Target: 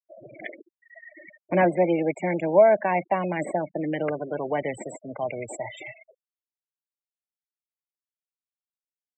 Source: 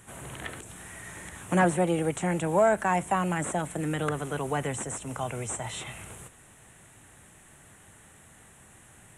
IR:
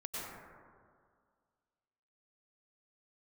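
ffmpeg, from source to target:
-af "highpass=140,equalizer=frequency=140:width_type=q:width=4:gain=-4,equalizer=frequency=330:width_type=q:width=4:gain=5,equalizer=frequency=600:width_type=q:width=4:gain=10,equalizer=frequency=1300:width_type=q:width=4:gain=-9,equalizer=frequency=2200:width_type=q:width=4:gain=9,equalizer=frequency=5100:width_type=q:width=4:gain=-7,lowpass=frequency=7900:width=0.5412,lowpass=frequency=7900:width=1.3066,afftfilt=real='re*gte(hypot(re,im),0.0355)':imag='im*gte(hypot(re,im),0.0355)':win_size=1024:overlap=0.75"

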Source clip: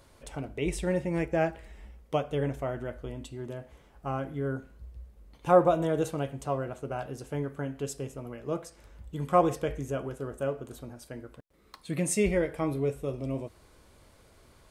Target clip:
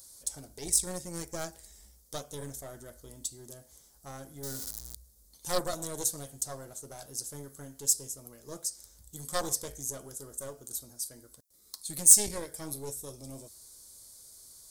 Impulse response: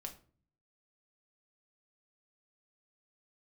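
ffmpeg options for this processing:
-filter_complex "[0:a]asettb=1/sr,asplit=3[link_01][link_02][link_03];[link_01]atrim=end=4.434[link_04];[link_02]atrim=start=4.43:end=4.95,asetpts=PTS-STARTPTS,afade=type=in:duration=0.004:curve=qsin,afade=type=out:start_time=0.516:duration=0.004:curve=qsin,aeval=exprs='val(0)+0.5*0.015*sgn(val(0))':channel_layout=same[link_05];[link_03]atrim=start=4.946[link_06];[link_04][link_05]acrossfade=duration=0.004:curve1=hsin:curve2=qsin[link_07];[link_07][link_06]acrossfade=duration=0.004:curve1=qsin:curve2=hsin,aeval=exprs='0.398*(cos(1*acos(clip(val(0)/0.398,-1,1)))-cos(1*PI/2))+0.2*(cos(2*acos(clip(val(0)/0.398,-1,1)))-cos(2*PI/2))+0.0447*(cos(6*acos(clip(val(0)/0.398,-1,1)))-cos(6*PI/2))':channel_layout=same,aexciter=amount=9.7:drive=9.6:freq=4200,volume=-11.5dB"

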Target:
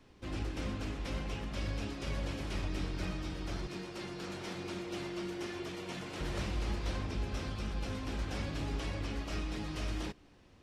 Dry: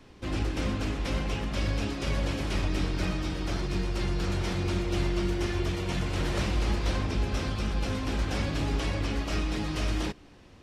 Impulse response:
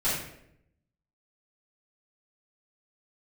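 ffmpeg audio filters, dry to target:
-filter_complex "[0:a]asettb=1/sr,asplit=3[link_01][link_02][link_03];[link_01]atrim=end=3.674[link_04];[link_02]atrim=start=3.67:end=6.21,asetpts=PTS-STARTPTS,afade=type=in:duration=0.004:curve=qsin,afade=type=out:start_time=2.536:duration=0.004:curve=qsin,highpass=190[link_05];[link_03]atrim=start=6.206[link_06];[link_04][link_05]acrossfade=duration=0.004:curve1=hsin:curve2=qsin[link_07];[link_07][link_06]acrossfade=duration=0.004:curve1=qsin:curve2=hsin,volume=-8dB"

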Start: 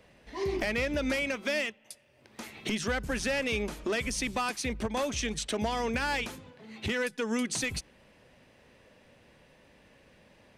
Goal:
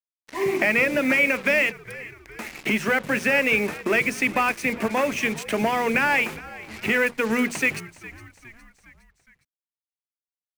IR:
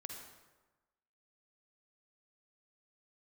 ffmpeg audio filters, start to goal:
-filter_complex "[0:a]highpass=frequency=140:width=0.5412,highpass=frequency=140:width=1.3066,highshelf=frequency=3000:width_type=q:width=3:gain=-7,bandreject=frequency=60:width_type=h:width=6,bandreject=frequency=120:width_type=h:width=6,bandreject=frequency=180:width_type=h:width=6,bandreject=frequency=240:width_type=h:width=6,bandreject=frequency=300:width_type=h:width=6,bandreject=frequency=360:width_type=h:width=6,bandreject=frequency=420:width_type=h:width=6,bandreject=frequency=480:width_type=h:width=6,bandreject=frequency=540:width_type=h:width=6,asplit=2[link_01][link_02];[link_02]aeval=exprs='sgn(val(0))*max(abs(val(0))-0.00596,0)':channel_layout=same,volume=-8dB[link_03];[link_01][link_03]amix=inputs=2:normalize=0,acontrast=48,acrusher=bits=5:mix=0:aa=0.5,aeval=exprs='sgn(val(0))*max(abs(val(0))-0.00355,0)':channel_layout=same,asplit=2[link_04][link_05];[link_05]asplit=4[link_06][link_07][link_08][link_09];[link_06]adelay=411,afreqshift=-72,volume=-18.5dB[link_10];[link_07]adelay=822,afreqshift=-144,volume=-24dB[link_11];[link_08]adelay=1233,afreqshift=-216,volume=-29.5dB[link_12];[link_09]adelay=1644,afreqshift=-288,volume=-35dB[link_13];[link_10][link_11][link_12][link_13]amix=inputs=4:normalize=0[link_14];[link_04][link_14]amix=inputs=2:normalize=0"

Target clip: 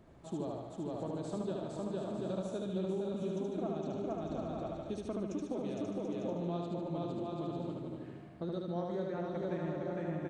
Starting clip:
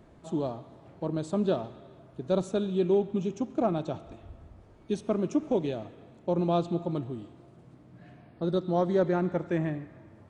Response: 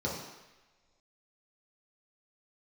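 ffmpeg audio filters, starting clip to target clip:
-filter_complex "[0:a]asplit=2[link_01][link_02];[link_02]aecho=0:1:460|736|901.6|1001|1061:0.631|0.398|0.251|0.158|0.1[link_03];[link_01][link_03]amix=inputs=2:normalize=0,acompressor=threshold=-31dB:ratio=6,asplit=2[link_04][link_05];[link_05]aecho=0:1:75|150|225|300|375|450|525:0.708|0.382|0.206|0.111|0.0602|0.0325|0.0176[link_06];[link_04][link_06]amix=inputs=2:normalize=0,volume=-5dB"

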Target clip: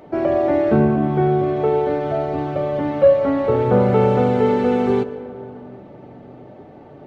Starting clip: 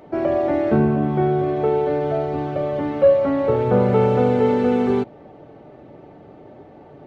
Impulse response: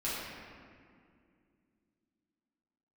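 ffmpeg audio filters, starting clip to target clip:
-filter_complex "[0:a]asplit=2[link_01][link_02];[1:a]atrim=start_sample=2205,asetrate=30429,aresample=44100,adelay=100[link_03];[link_02][link_03]afir=irnorm=-1:irlink=0,volume=-22.5dB[link_04];[link_01][link_04]amix=inputs=2:normalize=0,volume=1.5dB"

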